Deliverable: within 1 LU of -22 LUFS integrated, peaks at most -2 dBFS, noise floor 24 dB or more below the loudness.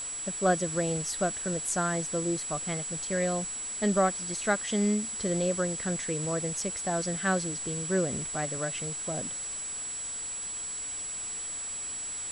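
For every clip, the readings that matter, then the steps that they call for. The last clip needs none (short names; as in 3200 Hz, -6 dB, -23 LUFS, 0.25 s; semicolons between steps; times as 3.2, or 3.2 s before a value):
steady tone 7800 Hz; tone level -34 dBFS; noise floor -37 dBFS; noise floor target -54 dBFS; loudness -30.0 LUFS; peak -13.0 dBFS; loudness target -22.0 LUFS
-> notch 7800 Hz, Q 30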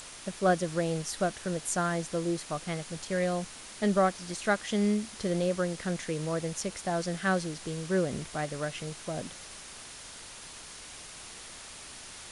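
steady tone none; noise floor -46 dBFS; noise floor target -56 dBFS
-> noise print and reduce 10 dB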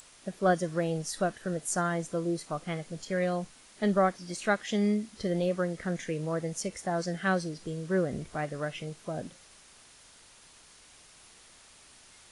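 noise floor -56 dBFS; loudness -31.5 LUFS; peak -13.0 dBFS; loudness target -22.0 LUFS
-> gain +9.5 dB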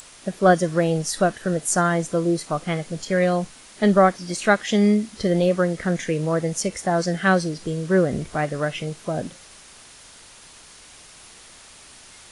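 loudness -22.0 LUFS; peak -3.5 dBFS; noise floor -47 dBFS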